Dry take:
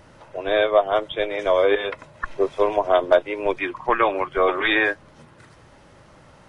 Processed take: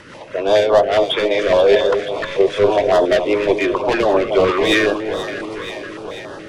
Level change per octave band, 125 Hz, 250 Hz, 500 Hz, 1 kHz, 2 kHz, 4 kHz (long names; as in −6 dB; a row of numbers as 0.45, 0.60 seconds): +11.5 dB, +9.0 dB, +6.5 dB, +2.5 dB, +2.5 dB, can't be measured